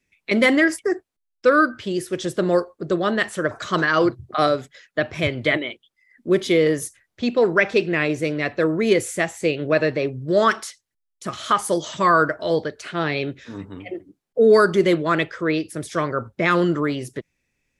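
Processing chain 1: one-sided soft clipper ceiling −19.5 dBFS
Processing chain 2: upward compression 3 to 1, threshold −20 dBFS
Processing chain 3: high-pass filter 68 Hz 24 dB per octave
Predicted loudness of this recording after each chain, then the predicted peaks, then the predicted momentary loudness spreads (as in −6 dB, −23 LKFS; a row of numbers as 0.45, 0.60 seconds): −23.5, −21.0, −21.0 LKFS; −5.5, −4.5, −4.0 dBFS; 13, 12, 13 LU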